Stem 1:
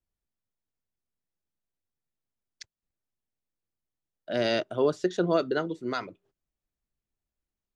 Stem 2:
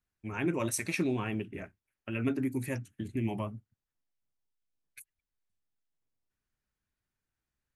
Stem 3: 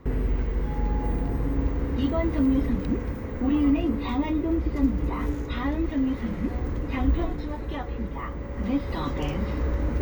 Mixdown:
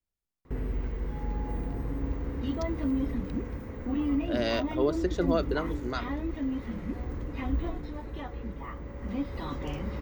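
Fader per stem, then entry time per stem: -3.0 dB, off, -6.5 dB; 0.00 s, off, 0.45 s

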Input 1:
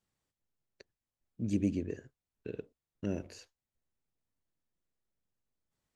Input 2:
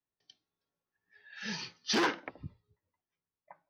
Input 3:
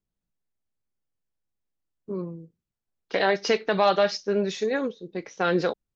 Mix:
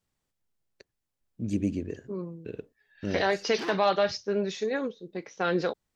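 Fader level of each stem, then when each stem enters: +2.5, -7.0, -3.5 dB; 0.00, 1.65, 0.00 s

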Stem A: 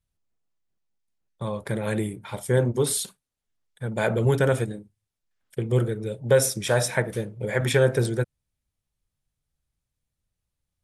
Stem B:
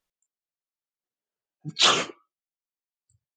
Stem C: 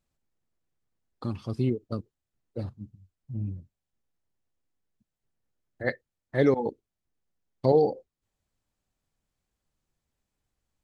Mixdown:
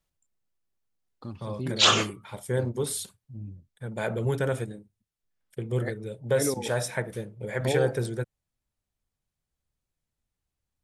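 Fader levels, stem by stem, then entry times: -6.0, -0.5, -7.0 dB; 0.00, 0.00, 0.00 s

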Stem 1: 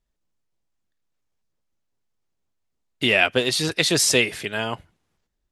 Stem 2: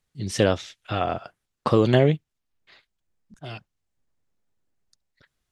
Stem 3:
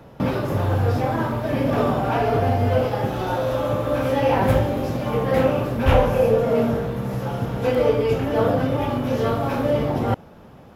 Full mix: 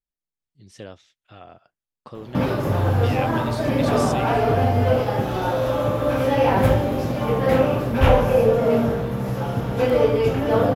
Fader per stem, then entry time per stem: -16.5, -18.5, +1.0 dB; 0.00, 0.40, 2.15 s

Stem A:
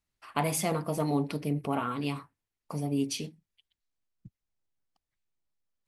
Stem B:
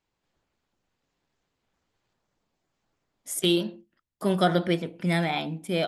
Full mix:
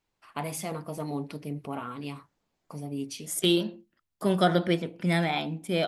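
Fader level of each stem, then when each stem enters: -5.0, -0.5 dB; 0.00, 0.00 s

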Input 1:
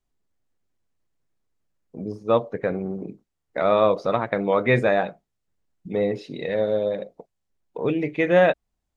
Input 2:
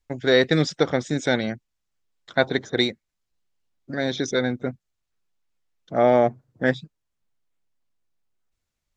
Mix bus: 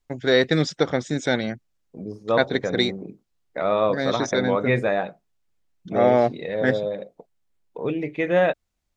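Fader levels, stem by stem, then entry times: -2.5, -0.5 dB; 0.00, 0.00 s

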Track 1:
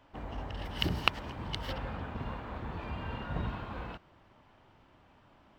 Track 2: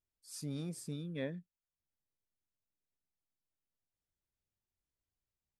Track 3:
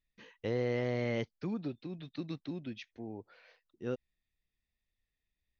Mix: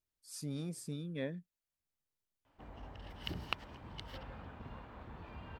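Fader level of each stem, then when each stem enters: -10.5 dB, 0.0 dB, off; 2.45 s, 0.00 s, off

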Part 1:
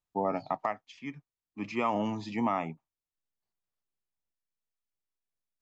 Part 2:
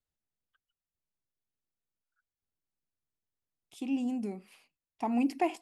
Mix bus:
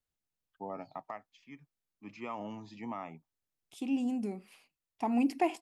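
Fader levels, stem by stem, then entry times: -11.0, 0.0 dB; 0.45, 0.00 s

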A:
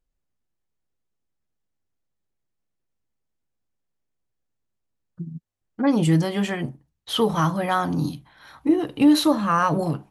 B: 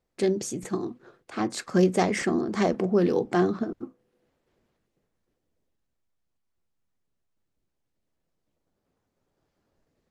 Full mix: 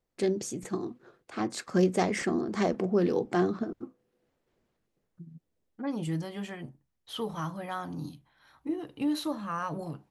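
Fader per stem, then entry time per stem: -13.5, -3.5 dB; 0.00, 0.00 s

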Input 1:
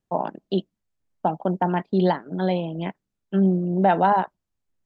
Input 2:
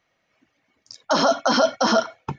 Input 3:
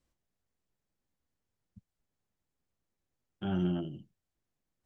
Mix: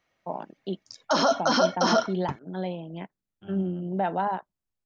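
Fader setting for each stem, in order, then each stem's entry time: -8.5, -3.5, -12.0 dB; 0.15, 0.00, 0.00 s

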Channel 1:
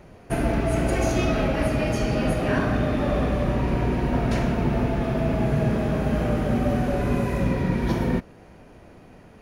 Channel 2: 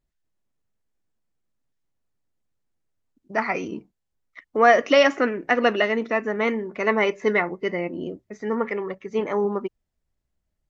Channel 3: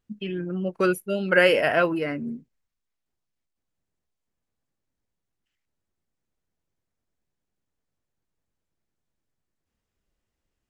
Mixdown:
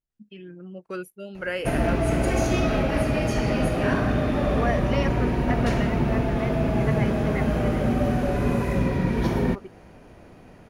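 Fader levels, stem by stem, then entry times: 0.0, -12.5, -11.5 dB; 1.35, 0.00, 0.10 s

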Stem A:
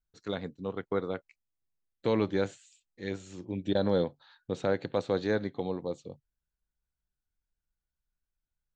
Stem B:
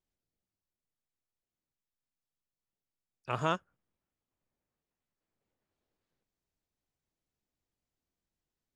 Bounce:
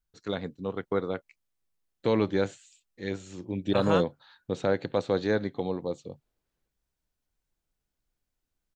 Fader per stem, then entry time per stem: +2.5, +1.0 dB; 0.00, 0.45 s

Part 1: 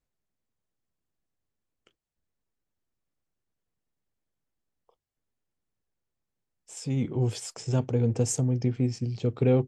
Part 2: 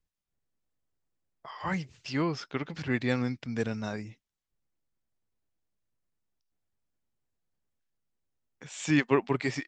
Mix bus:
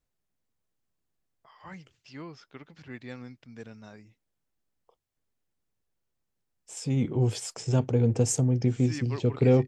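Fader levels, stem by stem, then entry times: +1.5, -13.0 dB; 0.00, 0.00 s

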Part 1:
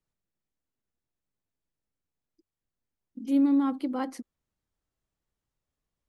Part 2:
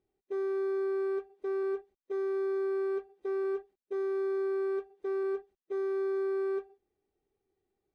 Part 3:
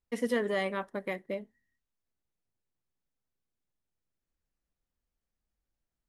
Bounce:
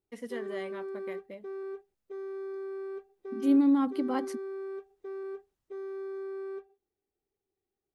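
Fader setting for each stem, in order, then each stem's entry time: 0.0, -7.0, -9.5 dB; 0.15, 0.00, 0.00 s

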